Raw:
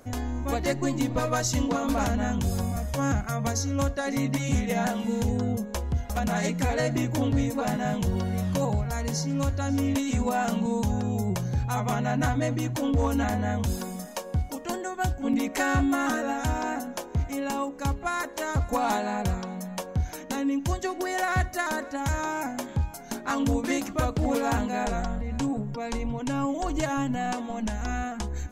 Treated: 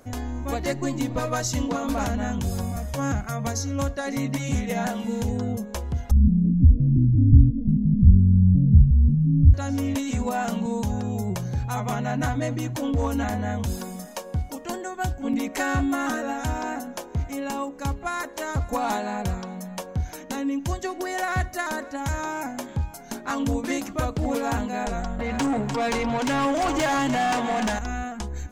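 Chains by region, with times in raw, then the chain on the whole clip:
6.11–9.54 s: inverse Chebyshev low-pass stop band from 1.1 kHz, stop band 70 dB + tilt EQ -4 dB/octave
25.19–27.79 s: delay 299 ms -12 dB + overdrive pedal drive 23 dB, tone 4.6 kHz, clips at -16 dBFS
whole clip: none

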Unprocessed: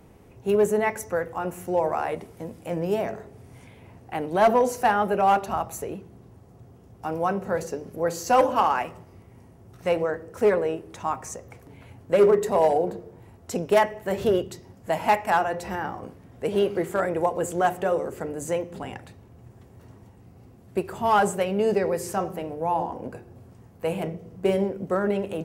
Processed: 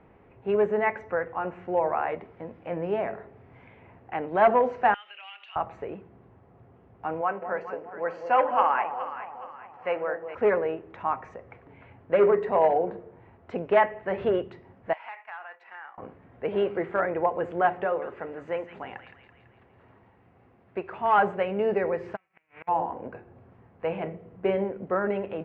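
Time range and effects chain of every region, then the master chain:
4.94–5.56 s: resonant high-pass 3 kHz, resonance Q 6.1 + compression 4:1, threshold -38 dBFS
7.21–10.35 s: high-pass 530 Hz 6 dB/octave + band-stop 3.7 kHz, Q 5.4 + echo whose repeats swap between lows and highs 209 ms, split 890 Hz, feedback 63%, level -7 dB
14.93–15.98 s: high-pass 1.3 kHz + expander -37 dBFS + compression 3:1, threshold -40 dBFS
17.85–21.18 s: bass shelf 370 Hz -6 dB + feedback echo behind a high-pass 166 ms, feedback 56%, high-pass 1.9 kHz, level -6.5 dB
22.15–22.67 s: formants flattened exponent 0.3 + four-pole ladder low-pass 2.6 kHz, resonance 65% + inverted gate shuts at -30 dBFS, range -34 dB
whole clip: low-pass 2.4 kHz 24 dB/octave; bass shelf 400 Hz -9 dB; trim +1.5 dB

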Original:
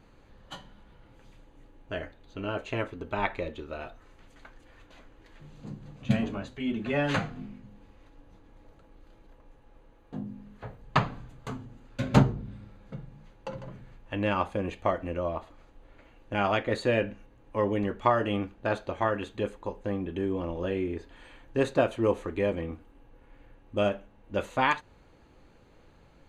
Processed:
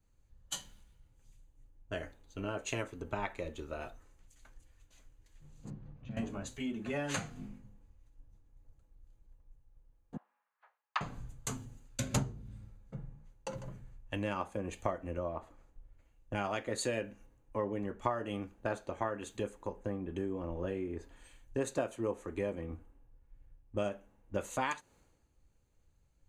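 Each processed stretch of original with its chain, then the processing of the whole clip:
5.70–6.17 s: compression 8:1, threshold -34 dBFS + distance through air 240 m
10.17–11.01 s: high-pass 930 Hz 24 dB/octave + distance through air 250 m
whole clip: resonant high shelf 5.3 kHz +9 dB, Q 1.5; compression 5:1, threshold -35 dBFS; three bands expanded up and down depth 100%

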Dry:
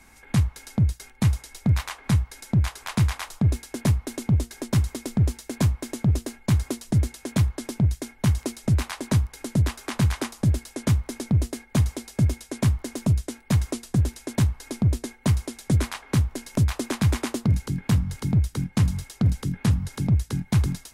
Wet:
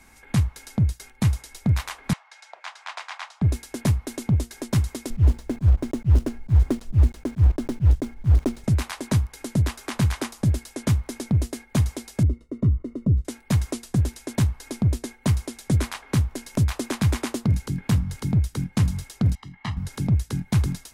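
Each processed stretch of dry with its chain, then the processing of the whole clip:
2.13–3.42 s: steep high-pass 650 Hz + distance through air 120 m
5.10–8.64 s: block-companded coder 3-bit + slow attack 178 ms + tilt EQ -3.5 dB/octave
12.23–13.25 s: waveshaping leveller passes 1 + boxcar filter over 54 samples
19.35–19.77 s: three-band isolator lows -14 dB, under 520 Hz, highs -23 dB, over 4.5 kHz + comb 1 ms, depth 86% + upward expansion, over -40 dBFS
whole clip: none

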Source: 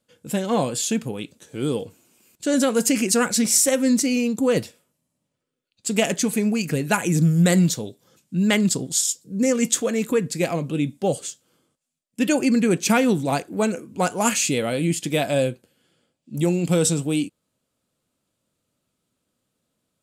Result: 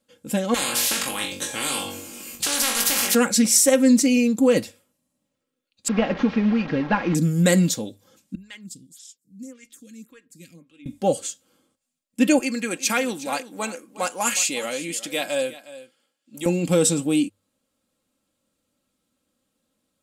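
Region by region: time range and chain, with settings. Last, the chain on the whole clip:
0.54–3.15 s: flutter echo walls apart 3.6 m, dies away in 0.28 s + spectrum-flattening compressor 10:1
5.88–7.15 s: one-bit delta coder 32 kbps, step -25.5 dBFS + low-pass 2.1 kHz
8.35–10.86 s: amplifier tone stack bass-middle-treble 6-0-2 + lamp-driven phase shifter 1.8 Hz
12.39–16.46 s: high-pass 970 Hz 6 dB/octave + delay 362 ms -16.5 dB
whole clip: hum notches 50/100 Hz; comb 3.7 ms, depth 52%

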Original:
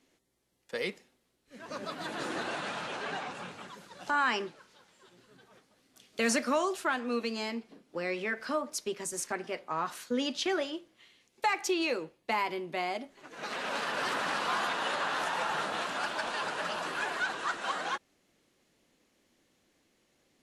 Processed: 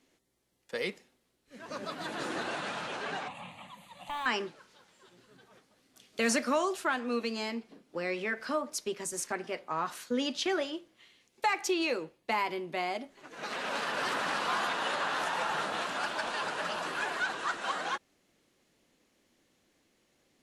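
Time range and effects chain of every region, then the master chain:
3.28–4.26 s: hard clipper -29 dBFS + static phaser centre 1.5 kHz, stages 6 + tape noise reduction on one side only encoder only
whole clip: none

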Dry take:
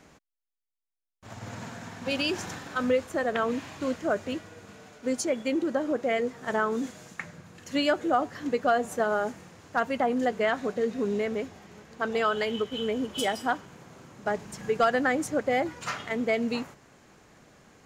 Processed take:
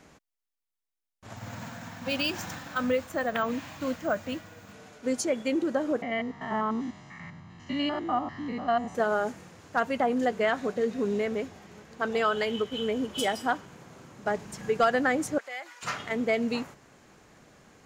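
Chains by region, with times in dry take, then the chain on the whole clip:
1.36–4.73 s: peaking EQ 400 Hz -14 dB 0.29 oct + careless resampling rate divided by 2×, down filtered, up hold
6.02–8.95 s: spectrogram pixelated in time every 100 ms + distance through air 160 m + comb 1 ms, depth 73%
15.38–15.83 s: high-pass 1.2 kHz + compression 1.5:1, threshold -42 dBFS
whole clip: none

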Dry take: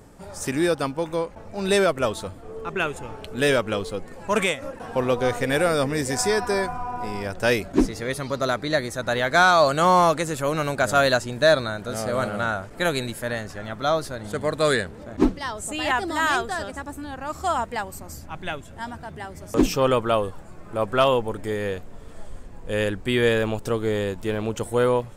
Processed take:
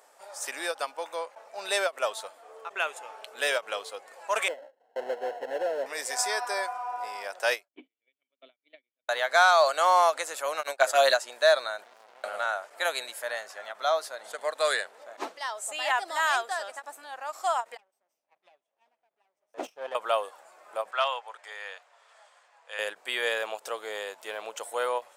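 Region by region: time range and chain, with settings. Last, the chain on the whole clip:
4.48–5.86 s: square wave that keeps the level + gate with hold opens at -22 dBFS, closes at -26 dBFS + boxcar filter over 37 samples
7.68–9.09 s: gate -25 dBFS, range -34 dB + cascade formant filter i + treble shelf 2.9 kHz +10 dB
10.63–11.14 s: gate -28 dBFS, range -23 dB + comb 7.5 ms, depth 92%
11.84–12.24 s: compression 10:1, threshold -34 dBFS + distance through air 71 m + sliding maximum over 65 samples
17.77–19.95 s: comb filter that takes the minimum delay 0.34 ms + tilt EQ -3 dB/octave + upward expansion 2.5:1, over -26 dBFS
20.91–22.79 s: high-pass 910 Hz + distance through air 72 m
whole clip: Chebyshev high-pass 630 Hz, order 3; endings held to a fixed fall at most 450 dB/s; trim -2.5 dB

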